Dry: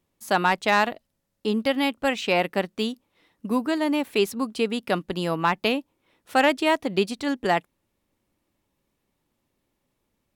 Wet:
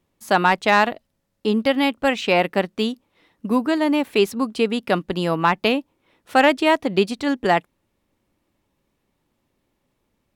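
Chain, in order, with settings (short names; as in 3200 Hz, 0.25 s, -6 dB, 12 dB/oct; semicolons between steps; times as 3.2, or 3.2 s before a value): high shelf 5300 Hz -5.5 dB; gain +4.5 dB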